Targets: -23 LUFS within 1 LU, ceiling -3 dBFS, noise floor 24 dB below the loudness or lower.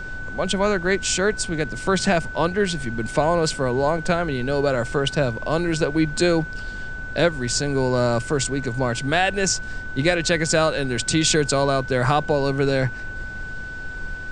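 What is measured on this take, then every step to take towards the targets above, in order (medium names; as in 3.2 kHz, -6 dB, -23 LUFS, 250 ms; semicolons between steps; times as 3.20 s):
steady tone 1.5 kHz; tone level -32 dBFS; noise floor -33 dBFS; noise floor target -46 dBFS; loudness -21.5 LUFS; peak level -3.5 dBFS; loudness target -23.0 LUFS
-> band-stop 1.5 kHz, Q 30; noise print and reduce 13 dB; trim -1.5 dB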